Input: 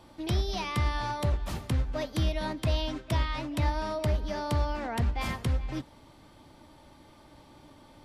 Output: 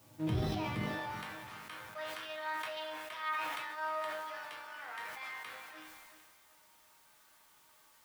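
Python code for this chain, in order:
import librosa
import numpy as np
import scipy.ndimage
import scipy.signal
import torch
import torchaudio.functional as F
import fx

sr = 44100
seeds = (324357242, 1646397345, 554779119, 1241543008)

p1 = fx.octave_divider(x, sr, octaves=1, level_db=-1.0)
p2 = fx.high_shelf(p1, sr, hz=8600.0, db=8.0)
p3 = fx.schmitt(p2, sr, flips_db=-33.0)
p4 = p2 + (p3 * librosa.db_to_amplitude(-7.5))
p5 = fx.bass_treble(p4, sr, bass_db=0, treble_db=-14)
p6 = fx.resonator_bank(p5, sr, root=44, chord='minor', decay_s=0.42)
p7 = fx.filter_sweep_highpass(p6, sr, from_hz=86.0, to_hz=1300.0, start_s=0.66, end_s=1.21, q=1.4)
p8 = fx.quant_dither(p7, sr, seeds[0], bits=12, dither='triangular')
p9 = p8 + fx.echo_feedback(p8, sr, ms=376, feedback_pct=44, wet_db=-15.0, dry=0)
p10 = fx.sustainer(p9, sr, db_per_s=23.0)
y = p10 * librosa.db_to_amplitude(6.0)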